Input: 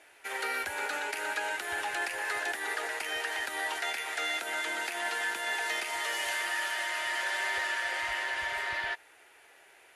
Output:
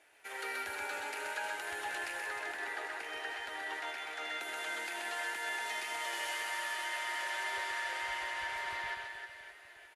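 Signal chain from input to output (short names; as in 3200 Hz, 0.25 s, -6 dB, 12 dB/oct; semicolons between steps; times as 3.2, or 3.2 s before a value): 2.26–4.41 LPF 3200 Hz 6 dB/oct; reverse bouncing-ball echo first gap 0.13 s, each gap 1.4×, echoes 5; gain -7.5 dB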